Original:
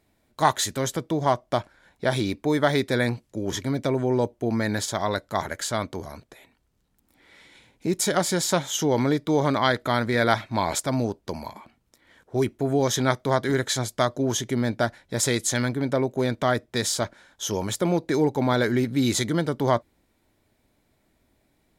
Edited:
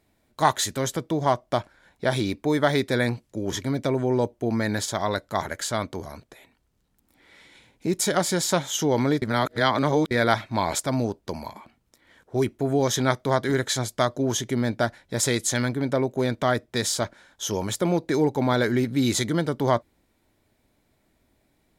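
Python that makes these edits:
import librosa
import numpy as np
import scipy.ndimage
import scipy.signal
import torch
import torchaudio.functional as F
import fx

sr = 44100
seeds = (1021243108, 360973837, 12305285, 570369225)

y = fx.edit(x, sr, fx.reverse_span(start_s=9.22, length_s=0.89), tone=tone)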